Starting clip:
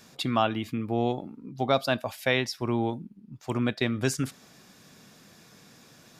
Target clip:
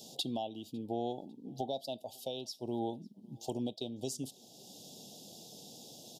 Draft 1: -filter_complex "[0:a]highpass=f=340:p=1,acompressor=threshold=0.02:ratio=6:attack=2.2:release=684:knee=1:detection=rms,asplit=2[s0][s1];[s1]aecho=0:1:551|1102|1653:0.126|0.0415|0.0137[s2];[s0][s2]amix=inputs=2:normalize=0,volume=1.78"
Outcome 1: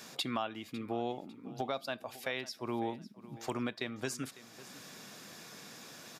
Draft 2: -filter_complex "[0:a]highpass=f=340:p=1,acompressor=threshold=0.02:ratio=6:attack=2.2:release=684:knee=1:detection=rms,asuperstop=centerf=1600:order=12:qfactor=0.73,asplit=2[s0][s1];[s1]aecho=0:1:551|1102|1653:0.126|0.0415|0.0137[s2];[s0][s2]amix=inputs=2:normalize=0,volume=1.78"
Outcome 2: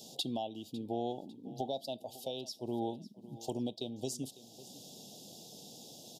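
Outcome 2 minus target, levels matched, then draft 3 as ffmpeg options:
echo-to-direct +9.5 dB
-filter_complex "[0:a]highpass=f=340:p=1,acompressor=threshold=0.02:ratio=6:attack=2.2:release=684:knee=1:detection=rms,asuperstop=centerf=1600:order=12:qfactor=0.73,asplit=2[s0][s1];[s1]aecho=0:1:551|1102:0.0422|0.0139[s2];[s0][s2]amix=inputs=2:normalize=0,volume=1.78"

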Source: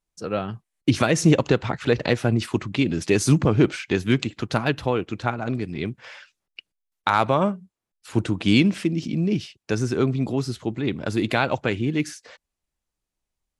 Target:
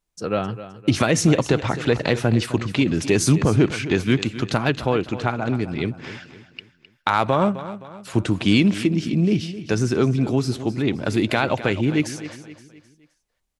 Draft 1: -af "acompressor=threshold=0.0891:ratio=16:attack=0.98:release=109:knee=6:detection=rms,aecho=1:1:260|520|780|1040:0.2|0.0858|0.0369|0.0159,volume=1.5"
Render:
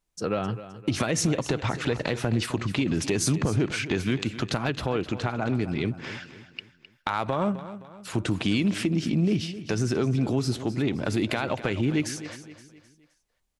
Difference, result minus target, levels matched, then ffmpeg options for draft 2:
compression: peak gain reduction +9 dB
-af "acompressor=threshold=0.282:ratio=16:attack=0.98:release=109:knee=6:detection=rms,aecho=1:1:260|520|780|1040:0.2|0.0858|0.0369|0.0159,volume=1.5"

